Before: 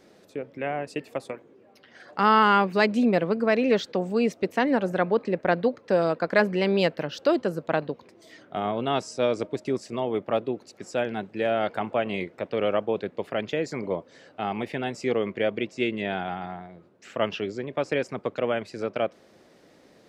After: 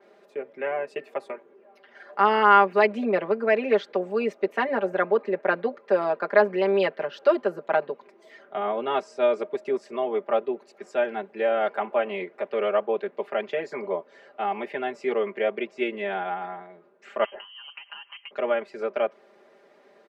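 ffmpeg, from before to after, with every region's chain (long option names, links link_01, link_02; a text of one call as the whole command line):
ffmpeg -i in.wav -filter_complex "[0:a]asettb=1/sr,asplit=3[link_01][link_02][link_03];[link_01]atrim=end=17.244[link_04];[link_02]atrim=start=17.24:end=18.31,asetpts=PTS-STARTPTS,afade=type=in:duration=0.004:curve=qsin,afade=type=out:start_time=1.066:duration=0.004:curve=qsin,lowpass=frequency=2800:width_type=q:width=0.5098,lowpass=frequency=2800:width_type=q:width=0.6013,lowpass=frequency=2800:width_type=q:width=0.9,lowpass=frequency=2800:width_type=q:width=2.563,afreqshift=-3300,asubboost=boost=10.5:cutoff=220,acompressor=threshold=-35dB:ratio=10:attack=3.2:release=140:knee=1:detection=peak[link_05];[link_03]atrim=start=18.306[link_06];[link_04][link_05]acrossfade=duration=0.004:curve1=hsin:curve2=qsin[link_07];[link_07][link_06]acrossfade=duration=0.004:curve1=qsin:curve2=hsin,acrossover=split=320 2600:gain=0.0794 1 0.2[link_08][link_09][link_10];[link_08][link_09][link_10]amix=inputs=3:normalize=0,aecho=1:1:5:0.93,adynamicequalizer=threshold=0.00631:dfrequency=4900:dqfactor=0.7:tfrequency=4900:tqfactor=0.7:attack=5:release=100:ratio=0.375:range=3:mode=cutabove:tftype=highshelf" out.wav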